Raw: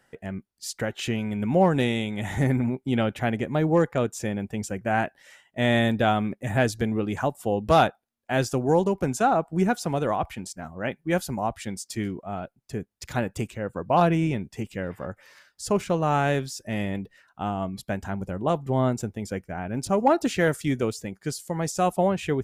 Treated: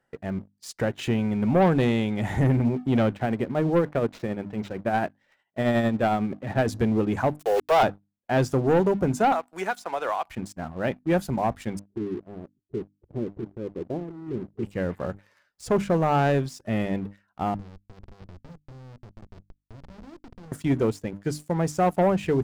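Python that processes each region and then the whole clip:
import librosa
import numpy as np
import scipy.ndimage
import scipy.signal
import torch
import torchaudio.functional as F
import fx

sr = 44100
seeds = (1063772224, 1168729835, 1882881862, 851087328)

y = fx.chain(x, sr, fx.highpass(hz=120.0, slope=6),
    fx.tremolo(hz=11.0, depth=0.52),
    fx.resample_linear(factor=4), at=(3.14, 6.68))
y = fx.chain(y, sr, fx.steep_highpass(hz=380.0, slope=72),
    fx.quant_dither(seeds[0], bits=6, dither='none'),
    fx.sustainer(db_per_s=35.0), at=(7.36, 7.83))
y = fx.chain(y, sr, fx.highpass(hz=940.0, slope=12),
    fx.band_squash(depth_pct=100), at=(9.32, 10.29))
y = fx.chain(y, sr, fx.ladder_lowpass(hz=420.0, resonance_pct=65),
    fx.over_compress(threshold_db=-33.0, ratio=-0.5), at=(11.79, 14.63))
y = fx.chain(y, sr, fx.tone_stack(knobs='10-0-1'),
    fx.schmitt(flips_db=-45.0),
    fx.resample_bad(factor=4, down='none', up='filtered'), at=(17.54, 20.52))
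y = fx.high_shelf(y, sr, hz=2100.0, db=-10.5)
y = fx.hum_notches(y, sr, base_hz=50, count=6)
y = fx.leveller(y, sr, passes=2)
y = y * 10.0 ** (-3.0 / 20.0)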